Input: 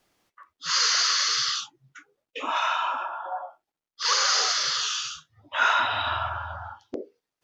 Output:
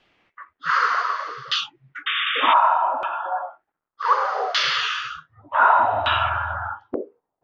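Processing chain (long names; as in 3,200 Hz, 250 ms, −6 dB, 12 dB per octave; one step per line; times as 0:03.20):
auto-filter low-pass saw down 0.66 Hz 640–3,100 Hz
sound drawn into the spectrogram noise, 0:02.06–0:02.54, 1,100–3,700 Hz −29 dBFS
level +5.5 dB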